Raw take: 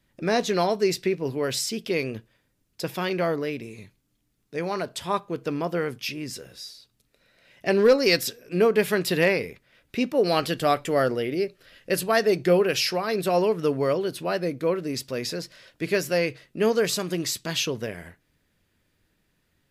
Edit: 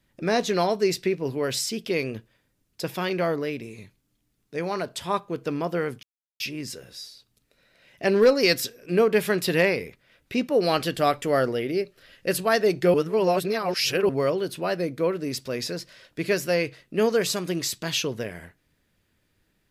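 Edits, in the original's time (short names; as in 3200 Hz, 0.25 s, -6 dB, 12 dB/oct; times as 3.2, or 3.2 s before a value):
6.03 insert silence 0.37 s
12.57–13.72 reverse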